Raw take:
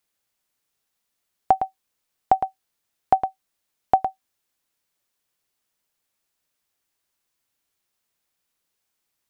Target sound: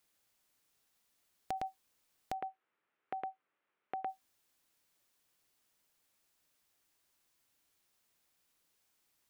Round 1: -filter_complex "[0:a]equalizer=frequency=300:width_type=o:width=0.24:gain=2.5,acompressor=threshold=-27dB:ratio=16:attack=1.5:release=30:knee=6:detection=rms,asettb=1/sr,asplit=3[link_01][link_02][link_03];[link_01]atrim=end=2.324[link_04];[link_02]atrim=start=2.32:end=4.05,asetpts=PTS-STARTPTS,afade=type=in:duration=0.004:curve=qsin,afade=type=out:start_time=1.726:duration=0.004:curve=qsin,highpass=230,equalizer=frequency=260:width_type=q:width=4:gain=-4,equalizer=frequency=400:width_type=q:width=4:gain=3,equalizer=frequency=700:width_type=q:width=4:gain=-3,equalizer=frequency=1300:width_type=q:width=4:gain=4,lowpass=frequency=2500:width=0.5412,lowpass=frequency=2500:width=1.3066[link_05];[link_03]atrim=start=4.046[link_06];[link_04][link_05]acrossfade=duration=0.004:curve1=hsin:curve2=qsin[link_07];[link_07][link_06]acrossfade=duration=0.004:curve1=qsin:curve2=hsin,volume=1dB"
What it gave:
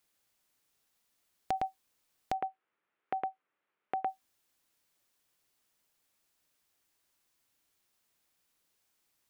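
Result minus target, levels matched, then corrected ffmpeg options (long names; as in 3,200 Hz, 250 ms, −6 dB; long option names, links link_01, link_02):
downward compressor: peak gain reduction −6 dB
-filter_complex "[0:a]equalizer=frequency=300:width_type=o:width=0.24:gain=2.5,acompressor=threshold=-33.5dB:ratio=16:attack=1.5:release=30:knee=6:detection=rms,asettb=1/sr,asplit=3[link_01][link_02][link_03];[link_01]atrim=end=2.324[link_04];[link_02]atrim=start=2.32:end=4.05,asetpts=PTS-STARTPTS,afade=type=in:duration=0.004:curve=qsin,afade=type=out:start_time=1.726:duration=0.004:curve=qsin,highpass=230,equalizer=frequency=260:width_type=q:width=4:gain=-4,equalizer=frequency=400:width_type=q:width=4:gain=3,equalizer=frequency=700:width_type=q:width=4:gain=-3,equalizer=frequency=1300:width_type=q:width=4:gain=4,lowpass=frequency=2500:width=0.5412,lowpass=frequency=2500:width=1.3066[link_05];[link_03]atrim=start=4.046[link_06];[link_04][link_05]acrossfade=duration=0.004:curve1=hsin:curve2=qsin[link_07];[link_07][link_06]acrossfade=duration=0.004:curve1=qsin:curve2=hsin,volume=1dB"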